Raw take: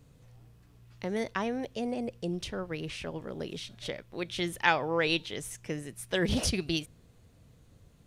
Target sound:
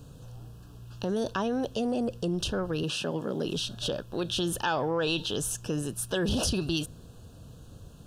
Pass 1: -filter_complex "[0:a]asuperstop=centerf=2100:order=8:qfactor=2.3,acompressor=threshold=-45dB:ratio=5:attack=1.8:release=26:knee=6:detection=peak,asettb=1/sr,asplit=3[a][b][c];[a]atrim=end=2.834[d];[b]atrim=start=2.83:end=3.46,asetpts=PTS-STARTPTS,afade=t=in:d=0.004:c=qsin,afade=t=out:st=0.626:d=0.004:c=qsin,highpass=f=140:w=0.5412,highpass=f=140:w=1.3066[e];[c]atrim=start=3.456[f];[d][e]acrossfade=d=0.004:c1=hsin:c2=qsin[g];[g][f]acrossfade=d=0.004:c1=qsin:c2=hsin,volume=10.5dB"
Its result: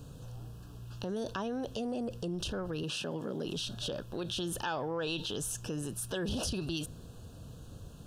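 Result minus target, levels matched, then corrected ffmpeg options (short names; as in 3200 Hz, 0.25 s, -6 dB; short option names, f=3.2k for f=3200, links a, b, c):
compressor: peak gain reduction +7 dB
-filter_complex "[0:a]asuperstop=centerf=2100:order=8:qfactor=2.3,acompressor=threshold=-36.5dB:ratio=5:attack=1.8:release=26:knee=6:detection=peak,asettb=1/sr,asplit=3[a][b][c];[a]atrim=end=2.834[d];[b]atrim=start=2.83:end=3.46,asetpts=PTS-STARTPTS,afade=t=in:d=0.004:c=qsin,afade=t=out:st=0.626:d=0.004:c=qsin,highpass=f=140:w=0.5412,highpass=f=140:w=1.3066[e];[c]atrim=start=3.456[f];[d][e]acrossfade=d=0.004:c1=hsin:c2=qsin[g];[g][f]acrossfade=d=0.004:c1=qsin:c2=hsin,volume=10.5dB"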